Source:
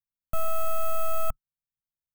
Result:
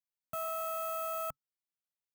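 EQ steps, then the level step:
high-pass filter 130 Hz 12 dB per octave
low-shelf EQ 250 Hz −4.5 dB
−5.0 dB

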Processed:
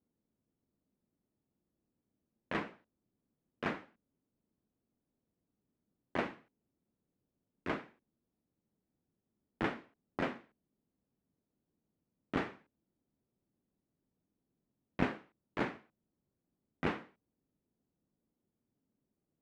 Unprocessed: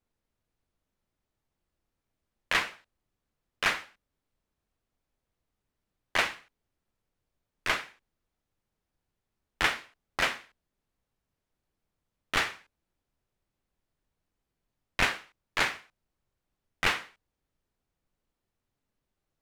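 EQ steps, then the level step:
resonant band-pass 240 Hz, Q 1.5
+7.5 dB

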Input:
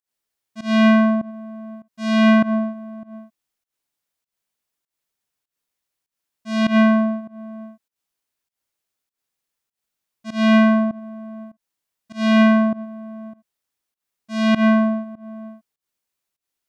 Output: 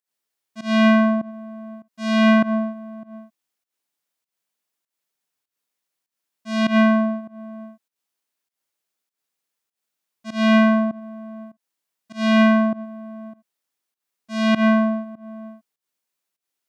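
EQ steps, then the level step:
Bessel high-pass filter 160 Hz
0.0 dB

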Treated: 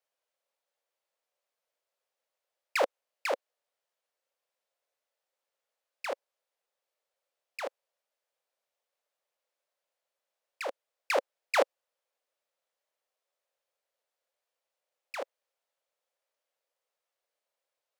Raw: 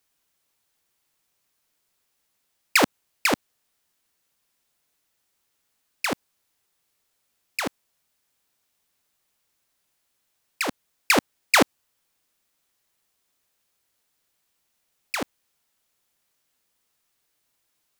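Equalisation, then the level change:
four-pole ladder high-pass 490 Hz, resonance 65%
high-shelf EQ 6,200 Hz −10 dB
0.0 dB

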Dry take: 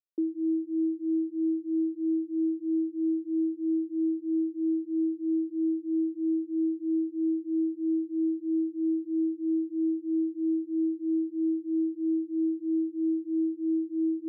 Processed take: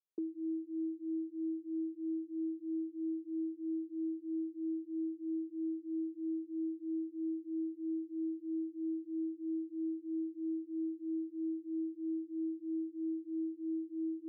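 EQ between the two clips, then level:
dynamic equaliser 260 Hz, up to −7 dB, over −41 dBFS, Q 1.3
resonant band-pass 370 Hz, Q 0.58
−4.5 dB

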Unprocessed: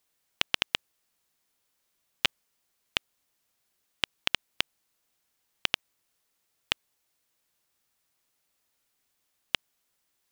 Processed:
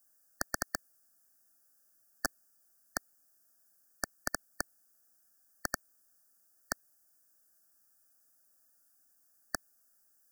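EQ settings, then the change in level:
linear-phase brick-wall band-stop 1,800–4,500 Hz
high-shelf EQ 6,100 Hz +8 dB
phaser with its sweep stopped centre 650 Hz, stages 8
+2.0 dB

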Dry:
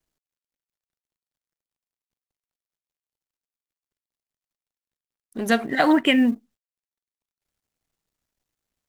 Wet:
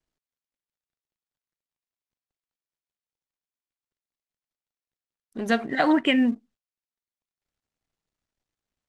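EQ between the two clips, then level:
high-frequency loss of the air 54 metres
−2.5 dB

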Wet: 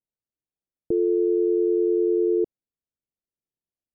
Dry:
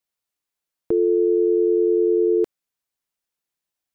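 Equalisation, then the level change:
Gaussian smoothing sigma 15 samples
0.0 dB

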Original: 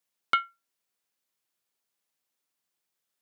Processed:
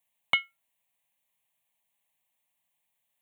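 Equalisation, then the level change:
phaser with its sweep stopped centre 1,400 Hz, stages 6
+6.0 dB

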